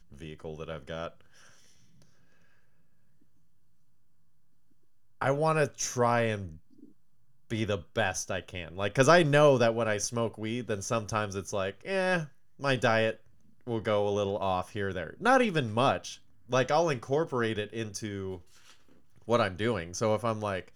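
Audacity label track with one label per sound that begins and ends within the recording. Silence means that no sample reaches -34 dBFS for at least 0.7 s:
5.210000	6.470000	sound
7.510000	18.350000	sound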